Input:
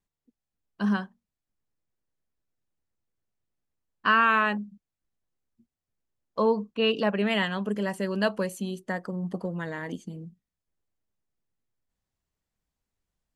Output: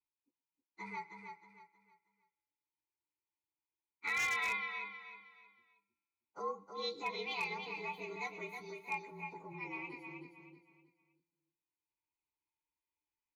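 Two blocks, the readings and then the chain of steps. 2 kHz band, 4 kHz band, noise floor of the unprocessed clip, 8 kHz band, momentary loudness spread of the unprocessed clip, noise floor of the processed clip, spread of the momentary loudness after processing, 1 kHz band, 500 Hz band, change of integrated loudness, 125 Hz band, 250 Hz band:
-9.5 dB, -11.5 dB, under -85 dBFS, -3.0 dB, 16 LU, under -85 dBFS, 19 LU, -13.5 dB, -17.5 dB, -13.0 dB, -22.0 dB, -24.0 dB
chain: frequency axis rescaled in octaves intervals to 114%; vowel filter u; treble shelf 3.3 kHz +9 dB; feedback comb 170 Hz, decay 1.5 s, mix 50%; delay 122 ms -24 dB; in parallel at -2 dB: compression, threshold -59 dBFS, peak gain reduction 17 dB; on the sum: peaking EQ 220 Hz -15 dB 1.1 oct; comb 2 ms, depth 57%; on a send: feedback delay 315 ms, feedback 32%, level -6.5 dB; on the sum: wavefolder -38.5 dBFS; trim +10 dB

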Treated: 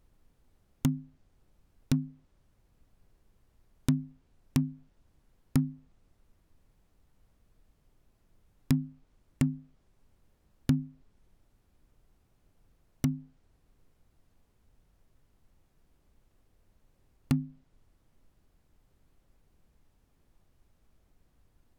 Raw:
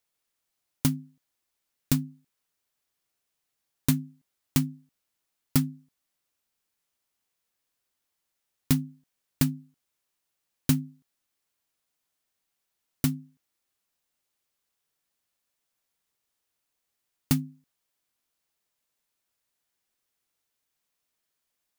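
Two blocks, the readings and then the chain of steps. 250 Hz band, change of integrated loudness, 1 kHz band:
-2.0 dB, -3.5 dB, -4.0 dB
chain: low-pass that closes with the level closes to 620 Hz, closed at -24 dBFS; added noise brown -62 dBFS; trim -2 dB

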